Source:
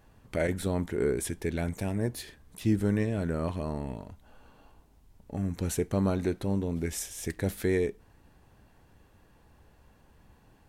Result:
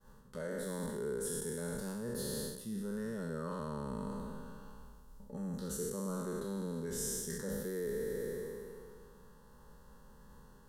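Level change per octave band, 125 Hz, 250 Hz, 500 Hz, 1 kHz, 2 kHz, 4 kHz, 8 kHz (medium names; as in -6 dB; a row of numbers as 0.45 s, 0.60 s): -12.0 dB, -9.0 dB, -7.0 dB, -6.0 dB, -9.0 dB, -4.5 dB, -1.5 dB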